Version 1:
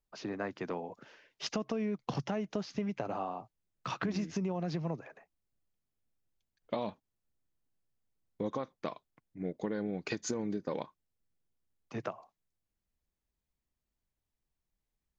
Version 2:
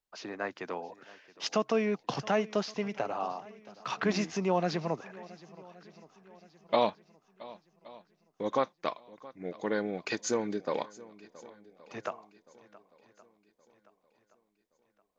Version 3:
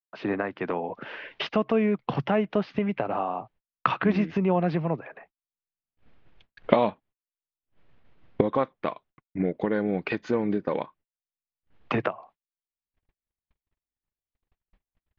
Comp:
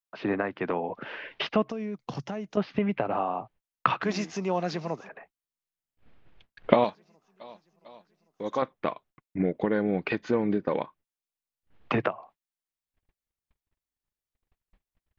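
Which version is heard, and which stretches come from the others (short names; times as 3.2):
3
1.69–2.57 from 1
4.01–5.09 from 2
6.84–8.62 from 2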